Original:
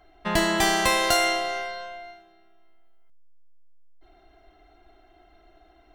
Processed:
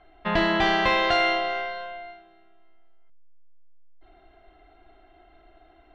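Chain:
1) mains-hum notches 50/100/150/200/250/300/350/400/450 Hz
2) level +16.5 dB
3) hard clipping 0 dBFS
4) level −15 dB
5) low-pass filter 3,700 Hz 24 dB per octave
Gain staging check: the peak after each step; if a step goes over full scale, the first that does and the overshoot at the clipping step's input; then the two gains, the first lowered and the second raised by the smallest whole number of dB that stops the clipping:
−8.0, +8.5, 0.0, −15.0, −13.0 dBFS
step 2, 8.5 dB
step 2 +7.5 dB, step 4 −6 dB

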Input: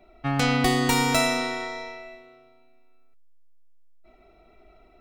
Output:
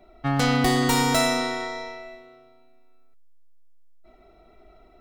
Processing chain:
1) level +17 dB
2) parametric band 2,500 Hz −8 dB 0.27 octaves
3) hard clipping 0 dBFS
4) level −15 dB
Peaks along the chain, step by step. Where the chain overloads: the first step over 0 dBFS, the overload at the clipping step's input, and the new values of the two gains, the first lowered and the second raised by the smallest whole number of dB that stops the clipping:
+8.0, +8.5, 0.0, −15.0 dBFS
step 1, 8.5 dB
step 1 +8 dB, step 4 −6 dB

